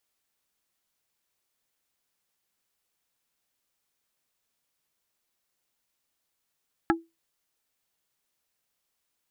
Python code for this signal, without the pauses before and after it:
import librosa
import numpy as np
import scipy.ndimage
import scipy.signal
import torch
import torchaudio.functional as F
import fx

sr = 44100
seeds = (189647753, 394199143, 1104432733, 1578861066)

y = fx.strike_wood(sr, length_s=0.45, level_db=-17.5, body='plate', hz=331.0, decay_s=0.22, tilt_db=0.5, modes=4)